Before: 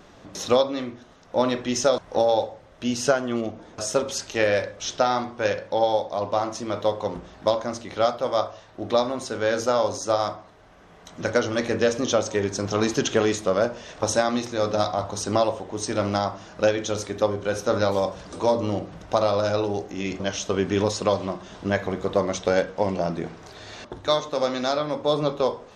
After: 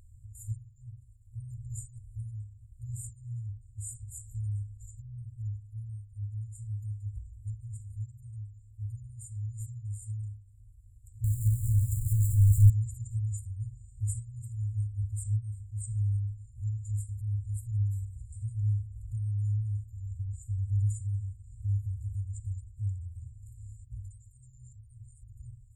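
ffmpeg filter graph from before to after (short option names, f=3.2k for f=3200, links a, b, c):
-filter_complex "[0:a]asettb=1/sr,asplit=3[a][b][c];[a]atrim=end=11.244[d];[b]atrim=start=11.24:end=12.7,asetpts=PTS-STARTPTS,afade=t=in:d=0.004:c=qsin,afade=t=out:st=1.456:d=0.004:c=qsin,aeval=exprs='val(0)+0.5*0.0631*sgn(val(0))':c=same,asubboost=boost=4:cutoff=250,acompressor=mode=upward:threshold=-22dB:ratio=2.5:attack=3.2:release=140:knee=2.83:detection=peak[e];[c]atrim=start=12.696[f];[d][e]acrossfade=d=0.004:c1=hsin:c2=qsin[g];[g][f]acrossfade=d=0.004:c1=qsin:c2=hsin,afftfilt=real='re*(1-between(b*sr/4096,120,7000))':imag='im*(1-between(b*sr/4096,120,7000))':win_size=4096:overlap=0.75,highshelf=f=2.9k:g=-9.5,volume=5.5dB"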